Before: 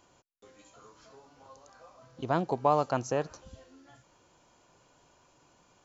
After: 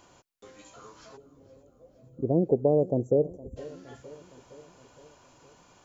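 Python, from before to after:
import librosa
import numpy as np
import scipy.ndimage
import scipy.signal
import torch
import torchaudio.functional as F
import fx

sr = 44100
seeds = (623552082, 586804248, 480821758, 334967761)

y = fx.cheby2_bandstop(x, sr, low_hz=1500.0, high_hz=4200.0, order=4, stop_db=70, at=(1.16, 3.56), fade=0.02)
y = fx.dynamic_eq(y, sr, hz=480.0, q=1.5, threshold_db=-45.0, ratio=4.0, max_db=6)
y = fx.echo_feedback(y, sr, ms=464, feedback_pct=60, wet_db=-20)
y = F.gain(torch.from_numpy(y), 6.0).numpy()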